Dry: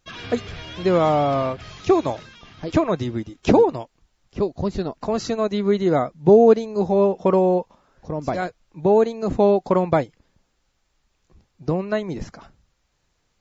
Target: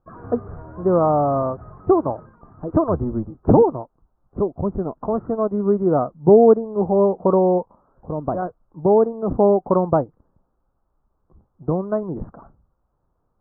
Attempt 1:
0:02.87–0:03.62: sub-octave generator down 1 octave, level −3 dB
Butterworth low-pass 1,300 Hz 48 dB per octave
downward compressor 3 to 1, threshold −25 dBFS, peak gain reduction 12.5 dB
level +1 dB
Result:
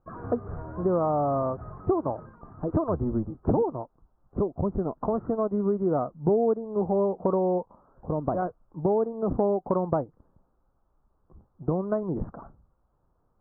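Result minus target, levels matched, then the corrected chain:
downward compressor: peak gain reduction +12.5 dB
0:02.87–0:03.62: sub-octave generator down 1 octave, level −3 dB
Butterworth low-pass 1,300 Hz 48 dB per octave
level +1 dB

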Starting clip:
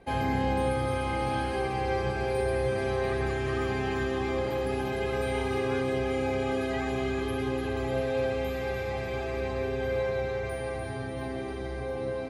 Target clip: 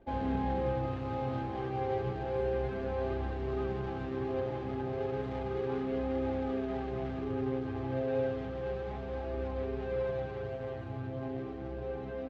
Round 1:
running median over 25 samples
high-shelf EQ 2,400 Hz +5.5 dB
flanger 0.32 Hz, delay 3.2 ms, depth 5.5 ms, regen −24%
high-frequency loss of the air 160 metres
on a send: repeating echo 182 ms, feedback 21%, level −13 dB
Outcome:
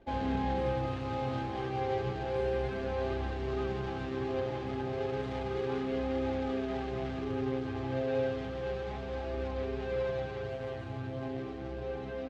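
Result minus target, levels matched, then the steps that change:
4,000 Hz band +6.0 dB
change: high-shelf EQ 2,400 Hz −4.5 dB

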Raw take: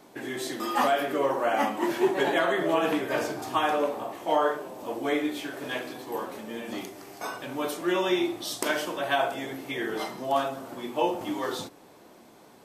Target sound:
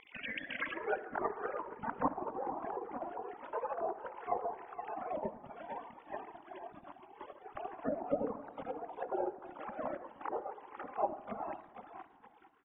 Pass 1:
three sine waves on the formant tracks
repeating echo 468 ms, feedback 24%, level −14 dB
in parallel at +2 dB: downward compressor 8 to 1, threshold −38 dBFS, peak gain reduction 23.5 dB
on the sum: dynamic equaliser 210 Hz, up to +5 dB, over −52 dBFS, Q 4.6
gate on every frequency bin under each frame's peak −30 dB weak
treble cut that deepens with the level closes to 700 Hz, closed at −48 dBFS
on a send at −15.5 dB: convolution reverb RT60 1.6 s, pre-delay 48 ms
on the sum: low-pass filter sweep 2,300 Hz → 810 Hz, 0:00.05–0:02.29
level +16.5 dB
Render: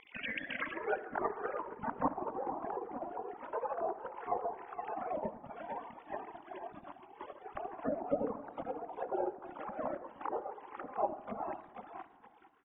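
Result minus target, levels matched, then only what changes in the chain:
downward compressor: peak gain reduction −6.5 dB
change: downward compressor 8 to 1, threshold −45.5 dBFS, peak gain reduction 30 dB

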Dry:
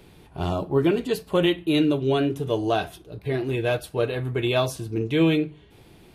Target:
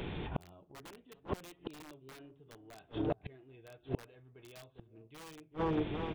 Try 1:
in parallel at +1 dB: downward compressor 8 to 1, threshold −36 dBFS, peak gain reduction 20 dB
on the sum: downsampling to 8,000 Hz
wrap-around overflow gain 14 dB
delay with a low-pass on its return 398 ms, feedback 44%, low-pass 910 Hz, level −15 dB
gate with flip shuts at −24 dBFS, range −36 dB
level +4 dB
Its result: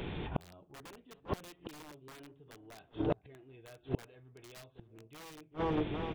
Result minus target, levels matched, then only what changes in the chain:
downward compressor: peak gain reduction −9 dB
change: downward compressor 8 to 1, threshold −46 dBFS, peak gain reduction 28.5 dB

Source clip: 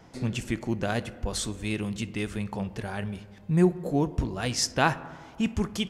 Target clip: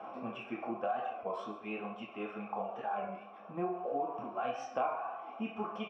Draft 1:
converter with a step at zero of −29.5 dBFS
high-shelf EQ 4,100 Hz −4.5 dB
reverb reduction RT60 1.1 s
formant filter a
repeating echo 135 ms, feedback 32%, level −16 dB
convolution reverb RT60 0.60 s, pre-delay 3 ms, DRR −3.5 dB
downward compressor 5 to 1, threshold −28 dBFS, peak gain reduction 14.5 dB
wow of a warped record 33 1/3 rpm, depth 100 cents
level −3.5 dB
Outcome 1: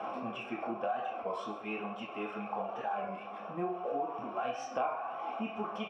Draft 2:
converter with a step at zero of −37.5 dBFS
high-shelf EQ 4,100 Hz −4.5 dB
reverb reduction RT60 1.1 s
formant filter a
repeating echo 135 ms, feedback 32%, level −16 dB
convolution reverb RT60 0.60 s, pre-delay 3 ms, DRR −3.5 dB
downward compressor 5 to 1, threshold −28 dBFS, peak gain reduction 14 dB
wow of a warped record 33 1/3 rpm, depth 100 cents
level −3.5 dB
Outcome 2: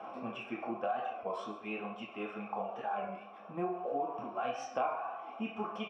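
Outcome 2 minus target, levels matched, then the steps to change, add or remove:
8,000 Hz band +4.5 dB
change: high-shelf EQ 4,100 Hz −11.5 dB

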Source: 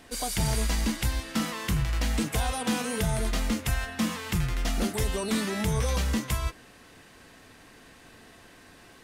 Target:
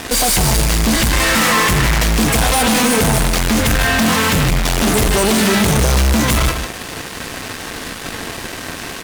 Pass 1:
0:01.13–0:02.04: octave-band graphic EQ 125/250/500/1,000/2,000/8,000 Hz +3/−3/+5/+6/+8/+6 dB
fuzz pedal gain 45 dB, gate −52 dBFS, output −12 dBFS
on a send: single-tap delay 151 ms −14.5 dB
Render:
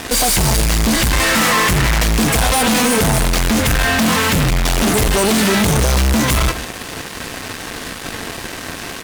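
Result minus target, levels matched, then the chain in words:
echo-to-direct −6.5 dB
0:01.13–0:02.04: octave-band graphic EQ 125/250/500/1,000/2,000/8,000 Hz +3/−3/+5/+6/+8/+6 dB
fuzz pedal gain 45 dB, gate −52 dBFS, output −12 dBFS
on a send: single-tap delay 151 ms −8 dB

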